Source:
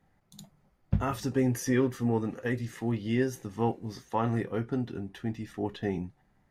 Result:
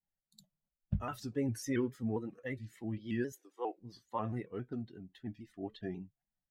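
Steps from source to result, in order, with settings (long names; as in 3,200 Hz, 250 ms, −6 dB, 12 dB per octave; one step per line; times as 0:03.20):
spectral dynamics exaggerated over time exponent 1.5
0:03.32–0:03.77: Butterworth high-pass 330 Hz 48 dB per octave
pitch modulation by a square or saw wave square 3.7 Hz, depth 100 cents
level −6 dB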